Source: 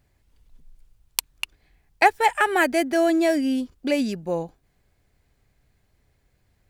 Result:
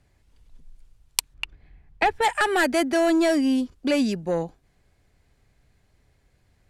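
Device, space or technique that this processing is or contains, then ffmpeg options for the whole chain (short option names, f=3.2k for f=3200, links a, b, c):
one-band saturation: -filter_complex "[0:a]acrossover=split=210|2800[a][b][c];[b]asoftclip=type=tanh:threshold=-19dB[d];[a][d][c]amix=inputs=3:normalize=0,lowpass=11k,asplit=3[e][f][g];[e]afade=t=out:st=1.33:d=0.02[h];[f]bass=f=250:g=8,treble=f=4k:g=-14,afade=t=in:st=1.33:d=0.02,afade=t=out:st=2.21:d=0.02[i];[g]afade=t=in:st=2.21:d=0.02[j];[h][i][j]amix=inputs=3:normalize=0,volume=2.5dB"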